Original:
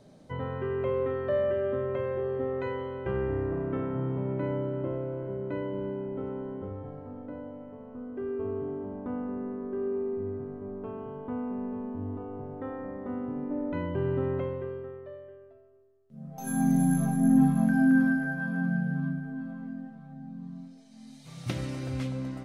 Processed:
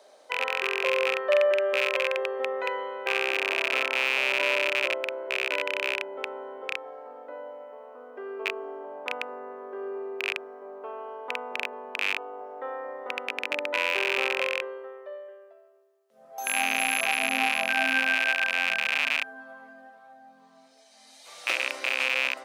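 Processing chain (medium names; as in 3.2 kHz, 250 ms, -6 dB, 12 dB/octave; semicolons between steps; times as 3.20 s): rattle on loud lows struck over -34 dBFS, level -19 dBFS; high-pass 530 Hz 24 dB/octave; trim +7 dB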